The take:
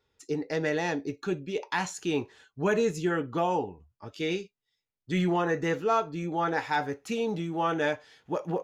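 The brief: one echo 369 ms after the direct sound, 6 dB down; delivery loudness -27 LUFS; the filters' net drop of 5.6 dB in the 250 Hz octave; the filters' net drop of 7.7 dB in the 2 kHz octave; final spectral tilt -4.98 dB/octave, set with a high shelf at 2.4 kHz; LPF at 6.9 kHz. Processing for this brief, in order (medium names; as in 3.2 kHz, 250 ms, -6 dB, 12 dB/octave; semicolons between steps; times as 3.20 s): low-pass 6.9 kHz; peaking EQ 250 Hz -9 dB; peaking EQ 2 kHz -8 dB; treble shelf 2.4 kHz -4 dB; delay 369 ms -6 dB; trim +6 dB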